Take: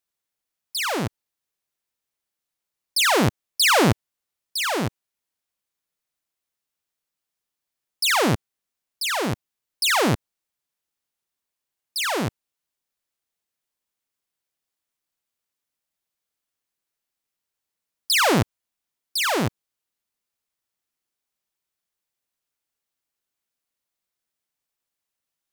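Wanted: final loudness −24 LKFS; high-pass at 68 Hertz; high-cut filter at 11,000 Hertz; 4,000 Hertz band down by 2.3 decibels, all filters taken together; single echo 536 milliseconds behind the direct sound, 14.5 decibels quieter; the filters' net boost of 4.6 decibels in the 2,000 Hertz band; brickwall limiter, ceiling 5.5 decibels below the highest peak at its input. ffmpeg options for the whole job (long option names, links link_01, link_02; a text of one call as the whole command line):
ffmpeg -i in.wav -af "highpass=68,lowpass=11000,equalizer=frequency=2000:width_type=o:gain=7,equalizer=frequency=4000:width_type=o:gain=-5.5,alimiter=limit=-9dB:level=0:latency=1,aecho=1:1:536:0.188,volume=-2dB" out.wav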